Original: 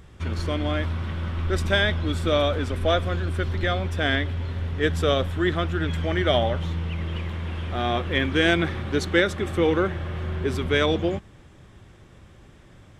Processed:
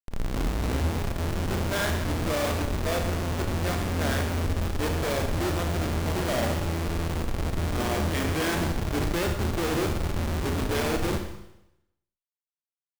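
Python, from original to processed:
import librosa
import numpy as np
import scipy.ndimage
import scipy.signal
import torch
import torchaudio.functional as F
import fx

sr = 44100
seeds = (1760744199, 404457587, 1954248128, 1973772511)

y = fx.tape_start_head(x, sr, length_s=0.86)
y = fx.schmitt(y, sr, flips_db=-25.0)
y = fx.rev_schroeder(y, sr, rt60_s=0.86, comb_ms=27, drr_db=4.0)
y = F.gain(torch.from_numpy(y), -2.0).numpy()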